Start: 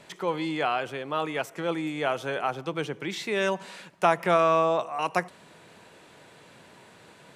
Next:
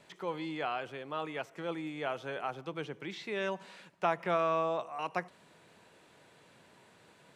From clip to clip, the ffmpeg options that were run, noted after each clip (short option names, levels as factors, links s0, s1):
-filter_complex "[0:a]acrossover=split=5400[s0][s1];[s1]acompressor=threshold=0.00126:ratio=4:attack=1:release=60[s2];[s0][s2]amix=inputs=2:normalize=0,volume=0.376"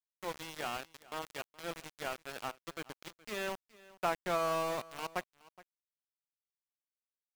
-af "aeval=exprs='val(0)*gte(abs(val(0)),0.0211)':c=same,aecho=1:1:420:0.0891,volume=0.75"